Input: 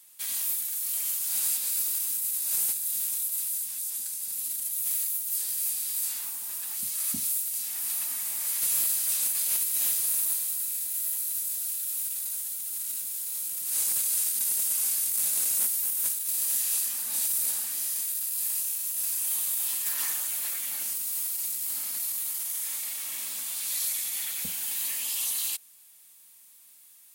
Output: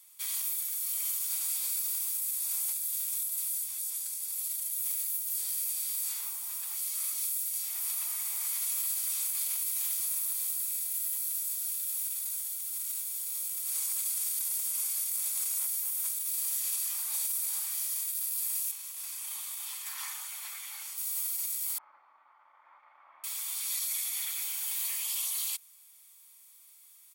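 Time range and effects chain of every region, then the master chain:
18.71–20.98 HPF 470 Hz + high shelf 6800 Hz -10.5 dB
21.78–23.24 LPF 1300 Hz 24 dB/oct + low shelf 320 Hz +10 dB
whole clip: limiter -20 dBFS; HPF 670 Hz 24 dB/oct; comb 0.9 ms, depth 38%; gain -3 dB

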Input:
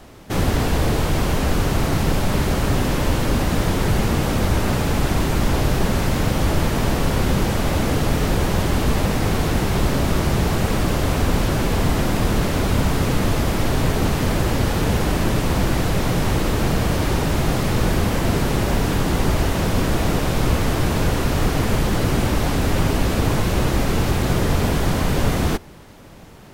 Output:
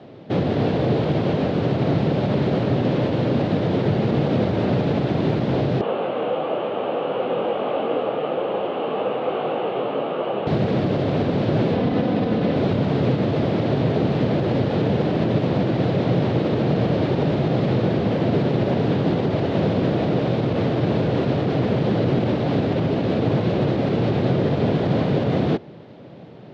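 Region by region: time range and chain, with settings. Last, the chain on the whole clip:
5.81–10.47 speaker cabinet 390–3000 Hz, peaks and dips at 500 Hz +7 dB, 790 Hz +6 dB, 1200 Hz +9 dB, 1900 Hz -6 dB, 2900 Hz +8 dB + detuned doubles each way 19 cents
11.74–12.56 running mean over 4 samples + comb 4 ms, depth 43%
whole clip: resonant low shelf 780 Hz +7 dB, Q 1.5; limiter -5 dBFS; elliptic band-pass 120–3900 Hz, stop band 70 dB; gain -3.5 dB

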